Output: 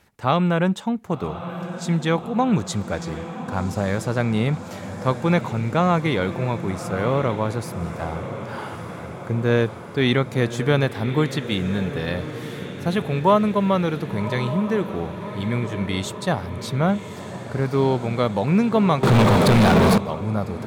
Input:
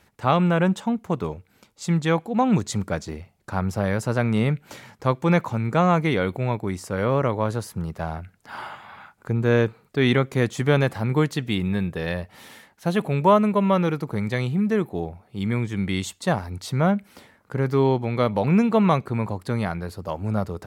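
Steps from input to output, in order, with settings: on a send: diffused feedback echo 1.132 s, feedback 65%, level -11 dB; 19.03–19.98 on the sum: sample leveller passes 5; dynamic EQ 3700 Hz, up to +4 dB, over -47 dBFS, Q 4.2

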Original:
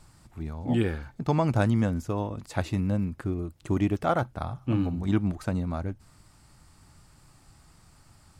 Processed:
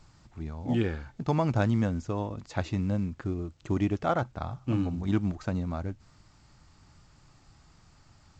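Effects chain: gain -2 dB; A-law 128 kbps 16000 Hz

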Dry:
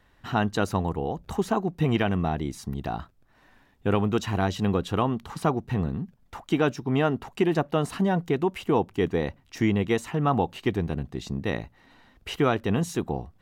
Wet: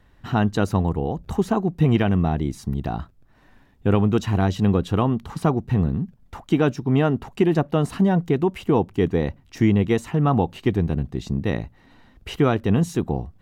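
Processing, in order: low shelf 360 Hz +8 dB

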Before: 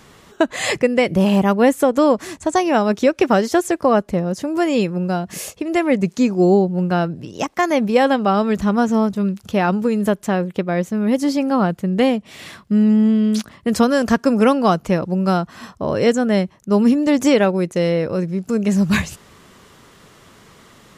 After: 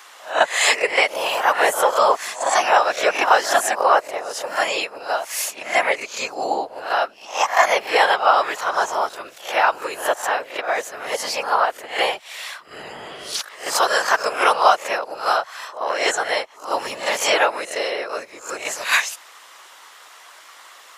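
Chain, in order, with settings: spectral swells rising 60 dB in 0.36 s; HPF 700 Hz 24 dB/oct; whisperiser; gain +4 dB

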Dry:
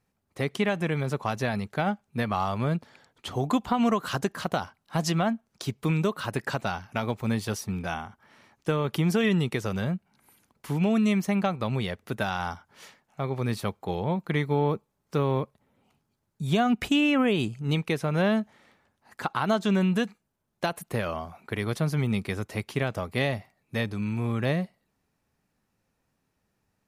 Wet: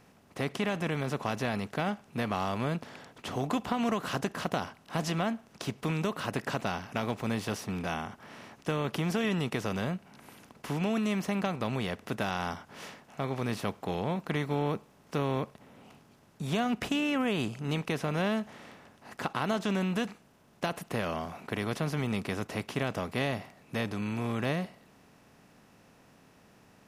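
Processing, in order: per-bin compression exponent 0.6; gain -8.5 dB

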